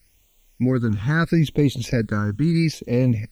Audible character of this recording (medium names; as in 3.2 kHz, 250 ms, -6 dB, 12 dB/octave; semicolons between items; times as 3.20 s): a quantiser's noise floor 10-bit, dither triangular; phasing stages 8, 0.76 Hz, lowest notch 620–1600 Hz